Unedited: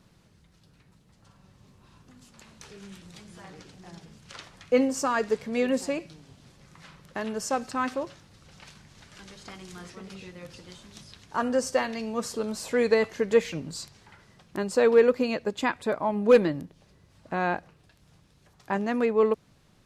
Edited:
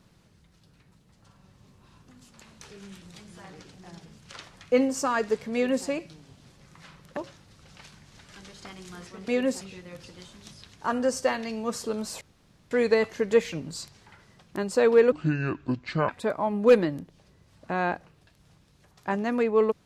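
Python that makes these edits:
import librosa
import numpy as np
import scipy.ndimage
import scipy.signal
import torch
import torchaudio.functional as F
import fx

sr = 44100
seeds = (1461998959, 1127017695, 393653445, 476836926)

y = fx.edit(x, sr, fx.duplicate(start_s=5.54, length_s=0.33, to_s=10.11),
    fx.cut(start_s=7.17, length_s=0.83),
    fx.insert_room_tone(at_s=12.71, length_s=0.5),
    fx.speed_span(start_s=15.12, length_s=0.59, speed=0.61), tone=tone)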